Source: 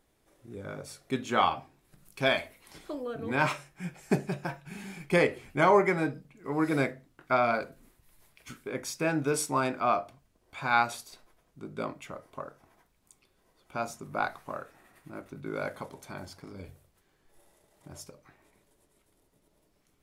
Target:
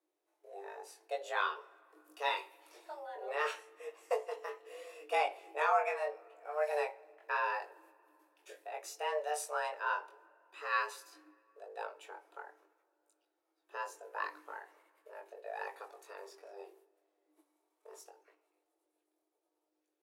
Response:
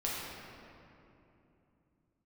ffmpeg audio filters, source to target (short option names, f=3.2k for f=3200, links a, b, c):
-filter_complex "[0:a]agate=range=-9dB:threshold=-58dB:ratio=16:detection=peak,atempo=1,lowshelf=f=210:g=4.5,afreqshift=300,flanger=delay=19.5:depth=3.4:speed=0.76,asplit=2[a][b];[1:a]atrim=start_sample=2205[c];[b][c]afir=irnorm=-1:irlink=0,volume=-26.5dB[d];[a][d]amix=inputs=2:normalize=0,volume=-6.5dB"